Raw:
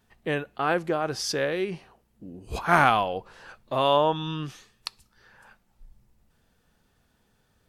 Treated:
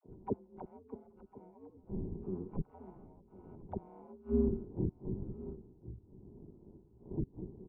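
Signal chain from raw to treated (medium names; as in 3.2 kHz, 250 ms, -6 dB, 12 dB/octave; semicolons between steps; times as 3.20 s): sorted samples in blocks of 32 samples; wind noise 190 Hz -43 dBFS; hum notches 50/100/150/200/250/300/350/400/450 Hz; spectral noise reduction 9 dB; in parallel at -0.5 dB: compression, threshold -31 dBFS, peak gain reduction 15.5 dB; on the sum: inverted gate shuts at -21 dBFS, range -31 dB; phase dispersion lows, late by 66 ms, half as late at 440 Hz; saturation -25 dBFS, distortion -19 dB; cascade formant filter u; ring modulator 90 Hz; on a send: delay 1052 ms -18.5 dB; on the sum: trim +15 dB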